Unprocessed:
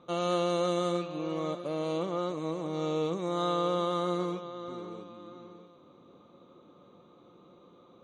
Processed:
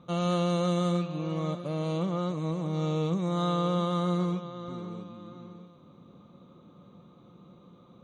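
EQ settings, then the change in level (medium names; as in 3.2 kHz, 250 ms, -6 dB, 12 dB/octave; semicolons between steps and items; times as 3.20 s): resonant low shelf 250 Hz +8 dB, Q 1.5; 0.0 dB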